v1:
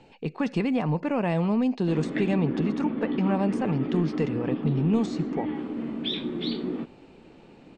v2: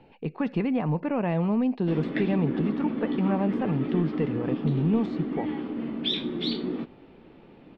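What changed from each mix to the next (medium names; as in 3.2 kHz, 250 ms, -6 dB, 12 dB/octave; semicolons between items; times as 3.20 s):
speech: add distance through air 410 m; master: add treble shelf 4.7 kHz +8.5 dB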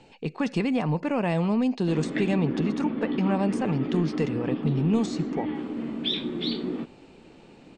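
speech: remove distance through air 410 m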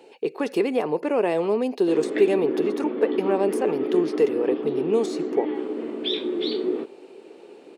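speech: remove steep low-pass 8.4 kHz 48 dB/octave; master: add resonant high-pass 400 Hz, resonance Q 4.1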